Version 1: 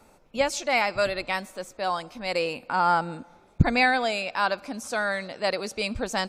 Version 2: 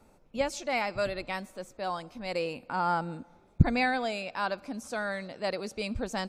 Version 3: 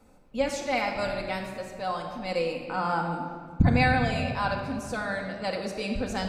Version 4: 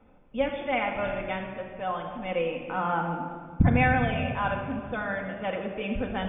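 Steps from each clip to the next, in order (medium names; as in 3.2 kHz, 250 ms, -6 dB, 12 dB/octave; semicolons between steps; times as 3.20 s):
bass shelf 450 Hz +7.5 dB; trim -8 dB
simulated room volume 2900 m³, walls mixed, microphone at 2 m
brick-wall FIR low-pass 3.6 kHz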